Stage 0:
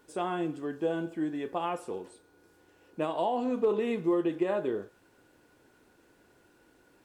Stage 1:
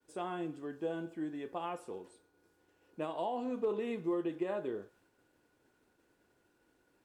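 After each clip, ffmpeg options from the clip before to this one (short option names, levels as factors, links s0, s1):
-af "agate=range=0.0224:threshold=0.00112:ratio=3:detection=peak,volume=0.447"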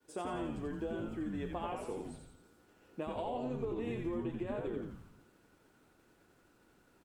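-filter_complex "[0:a]acompressor=threshold=0.01:ratio=6,asplit=8[s0][s1][s2][s3][s4][s5][s6][s7];[s1]adelay=86,afreqshift=-110,volume=0.631[s8];[s2]adelay=172,afreqshift=-220,volume=0.339[s9];[s3]adelay=258,afreqshift=-330,volume=0.184[s10];[s4]adelay=344,afreqshift=-440,volume=0.0989[s11];[s5]adelay=430,afreqshift=-550,volume=0.0537[s12];[s6]adelay=516,afreqshift=-660,volume=0.0288[s13];[s7]adelay=602,afreqshift=-770,volume=0.0157[s14];[s0][s8][s9][s10][s11][s12][s13][s14]amix=inputs=8:normalize=0,volume=1.5"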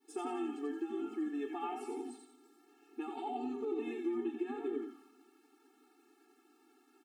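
-af "afftfilt=real='re*eq(mod(floor(b*sr/1024/230),2),1)':imag='im*eq(mod(floor(b*sr/1024/230),2),1)':win_size=1024:overlap=0.75,volume=1.41"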